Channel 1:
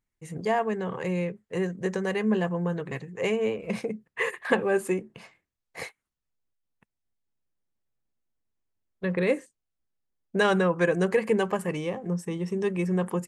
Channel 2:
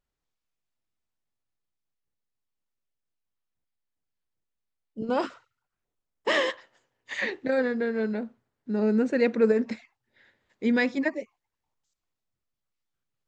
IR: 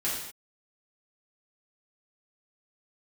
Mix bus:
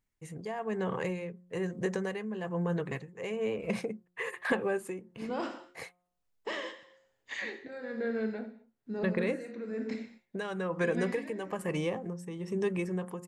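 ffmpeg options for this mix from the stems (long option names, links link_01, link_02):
-filter_complex "[0:a]acompressor=threshold=-28dB:ratio=3,volume=1dB,asplit=2[link_01][link_02];[1:a]alimiter=limit=-21.5dB:level=0:latency=1:release=46,adelay=200,volume=-7dB,asplit=2[link_03][link_04];[link_04]volume=-8.5dB[link_05];[link_02]apad=whole_len=594352[link_06];[link_03][link_06]sidechaincompress=threshold=-42dB:ratio=8:attack=16:release=166[link_07];[2:a]atrim=start_sample=2205[link_08];[link_05][link_08]afir=irnorm=-1:irlink=0[link_09];[link_01][link_07][link_09]amix=inputs=3:normalize=0,bandreject=frequency=178.2:width_type=h:width=4,bandreject=frequency=356.4:width_type=h:width=4,bandreject=frequency=534.6:width_type=h:width=4,bandreject=frequency=712.8:width_type=h:width=4,bandreject=frequency=891:width_type=h:width=4,bandreject=frequency=1069.2:width_type=h:width=4,bandreject=frequency=1247.4:width_type=h:width=4,bandreject=frequency=1425.6:width_type=h:width=4,tremolo=f=1.1:d=0.65"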